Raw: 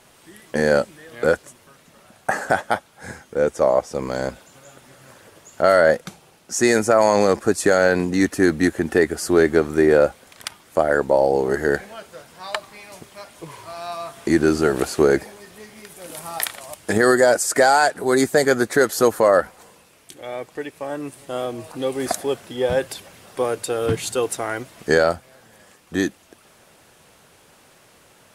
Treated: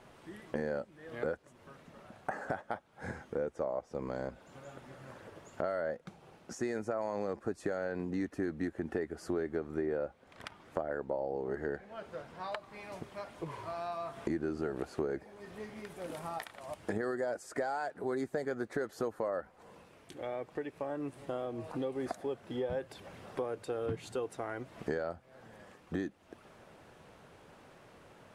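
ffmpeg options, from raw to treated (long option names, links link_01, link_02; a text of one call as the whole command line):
ffmpeg -i in.wav -filter_complex "[0:a]asettb=1/sr,asplit=3[link_01][link_02][link_03];[link_01]atrim=end=9.764[link_04];[link_02]atrim=start=9.76:end=12.52,asetpts=PTS-STARTPTS,afade=type=in:duration=0.004:curve=qsin,afade=type=out:start_time=2.756:duration=0.004:curve=qsin,highshelf=frequency=7700:gain=-6.5[link_05];[link_03]atrim=start=12.516[link_06];[link_04][link_05]acrossfade=duration=0.004:curve1=hsin:curve2=qsin[link_07];[link_07][link_06]acrossfade=duration=0.004:curve1=qsin:curve2=hsin,acompressor=threshold=-33dB:ratio=4,lowpass=frequency=1300:poles=1,volume=-1.5dB" out.wav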